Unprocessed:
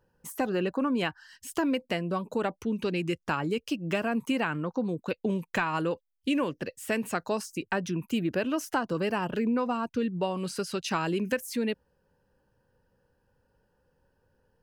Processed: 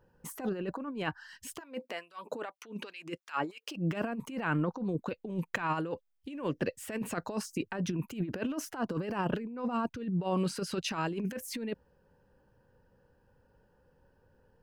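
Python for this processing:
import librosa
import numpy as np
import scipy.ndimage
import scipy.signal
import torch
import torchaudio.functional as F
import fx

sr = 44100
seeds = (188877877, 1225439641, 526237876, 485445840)

y = fx.peak_eq(x, sr, hz=13000.0, db=-7.5, octaves=2.7)
y = fx.over_compress(y, sr, threshold_db=-32.0, ratio=-0.5)
y = fx.filter_lfo_highpass(y, sr, shape='sine', hz=fx.line((1.59, 1.5), (3.76, 4.1)), low_hz=260.0, high_hz=2400.0, q=0.81, at=(1.59, 3.76), fade=0.02)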